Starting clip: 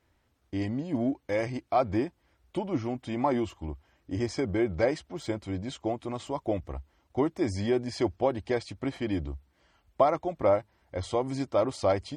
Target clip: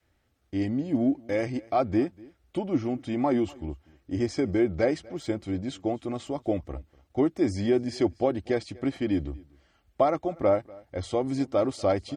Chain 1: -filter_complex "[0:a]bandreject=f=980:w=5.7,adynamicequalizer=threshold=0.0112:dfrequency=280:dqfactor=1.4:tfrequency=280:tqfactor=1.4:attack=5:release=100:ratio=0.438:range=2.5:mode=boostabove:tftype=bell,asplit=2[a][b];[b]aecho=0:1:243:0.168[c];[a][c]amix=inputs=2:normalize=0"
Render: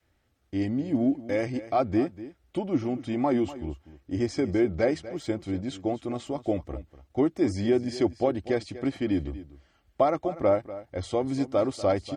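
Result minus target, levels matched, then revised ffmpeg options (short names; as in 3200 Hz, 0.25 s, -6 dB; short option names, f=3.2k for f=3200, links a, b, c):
echo-to-direct +8 dB
-filter_complex "[0:a]bandreject=f=980:w=5.7,adynamicequalizer=threshold=0.0112:dfrequency=280:dqfactor=1.4:tfrequency=280:tqfactor=1.4:attack=5:release=100:ratio=0.438:range=2.5:mode=boostabove:tftype=bell,asplit=2[a][b];[b]aecho=0:1:243:0.0668[c];[a][c]amix=inputs=2:normalize=0"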